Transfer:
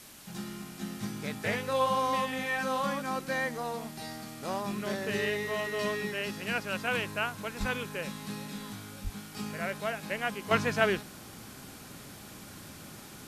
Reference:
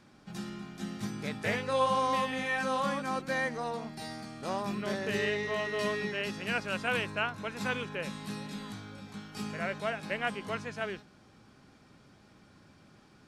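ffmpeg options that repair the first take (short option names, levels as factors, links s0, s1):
-filter_complex "[0:a]asplit=3[s0][s1][s2];[s0]afade=t=out:st=7.59:d=0.02[s3];[s1]highpass=f=140:w=0.5412,highpass=f=140:w=1.3066,afade=t=in:st=7.59:d=0.02,afade=t=out:st=7.71:d=0.02[s4];[s2]afade=t=in:st=7.71:d=0.02[s5];[s3][s4][s5]amix=inputs=3:normalize=0,asplit=3[s6][s7][s8];[s6]afade=t=out:st=9.03:d=0.02[s9];[s7]highpass=f=140:w=0.5412,highpass=f=140:w=1.3066,afade=t=in:st=9.03:d=0.02,afade=t=out:st=9.15:d=0.02[s10];[s8]afade=t=in:st=9.15:d=0.02[s11];[s9][s10][s11]amix=inputs=3:normalize=0,afwtdn=0.0032,asetnsamples=n=441:p=0,asendcmd='10.51 volume volume -10dB',volume=1"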